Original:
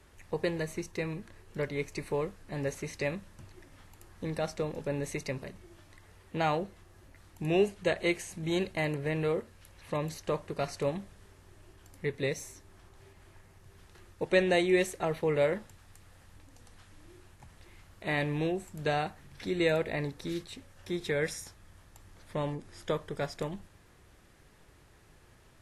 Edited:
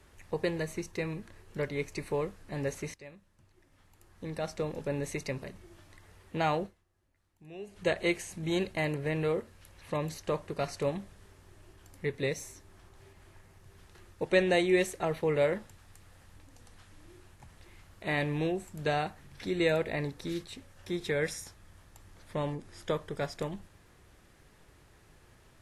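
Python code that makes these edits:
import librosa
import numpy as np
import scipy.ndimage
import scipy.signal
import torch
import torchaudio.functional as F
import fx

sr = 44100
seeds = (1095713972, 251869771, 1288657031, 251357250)

y = fx.edit(x, sr, fx.fade_in_from(start_s=2.94, length_s=1.73, curve='qua', floor_db=-17.0),
    fx.fade_down_up(start_s=6.66, length_s=1.11, db=-19.5, fade_s=0.5, curve='exp'), tone=tone)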